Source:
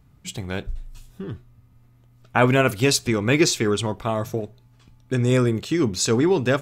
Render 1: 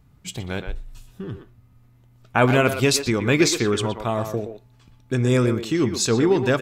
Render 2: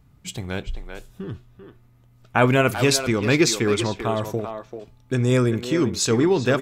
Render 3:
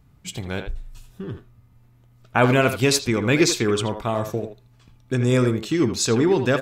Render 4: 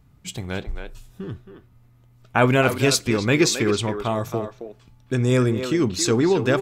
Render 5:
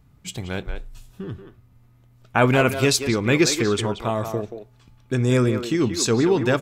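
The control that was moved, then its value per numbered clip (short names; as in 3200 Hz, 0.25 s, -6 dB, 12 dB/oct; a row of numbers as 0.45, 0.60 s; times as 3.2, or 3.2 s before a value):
speakerphone echo, time: 120, 390, 80, 270, 180 ms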